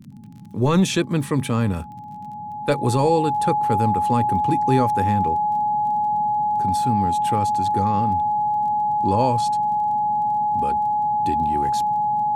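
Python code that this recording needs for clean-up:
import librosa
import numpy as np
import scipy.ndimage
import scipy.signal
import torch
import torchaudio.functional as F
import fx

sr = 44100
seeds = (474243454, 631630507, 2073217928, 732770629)

y = fx.fix_declick_ar(x, sr, threshold=6.5)
y = fx.notch(y, sr, hz=840.0, q=30.0)
y = fx.noise_reduce(y, sr, print_start_s=0.0, print_end_s=0.5, reduce_db=30.0)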